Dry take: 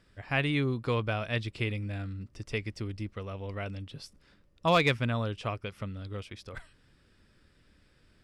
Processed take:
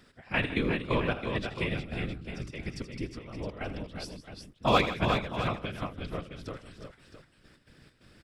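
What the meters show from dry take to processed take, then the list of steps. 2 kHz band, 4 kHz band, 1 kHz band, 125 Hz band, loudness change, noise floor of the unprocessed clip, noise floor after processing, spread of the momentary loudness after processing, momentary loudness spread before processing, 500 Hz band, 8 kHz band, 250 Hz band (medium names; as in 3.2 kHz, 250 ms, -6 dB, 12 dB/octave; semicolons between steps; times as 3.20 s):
0.0 dB, +0.5 dB, +2.0 dB, -2.5 dB, 0.0 dB, -65 dBFS, -64 dBFS, 16 LU, 17 LU, +0.5 dB, +1.5 dB, +1.0 dB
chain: bass shelf 74 Hz -6 dB; trance gate "x..x.xx.x" 133 bpm -12 dB; in parallel at +1.5 dB: compression, threshold -49 dBFS, peak gain reduction 26.5 dB; on the sum: whisper effect; multi-tap echo 80/157/348/365/665 ms -14/-15/-13.5/-7/-11.5 dB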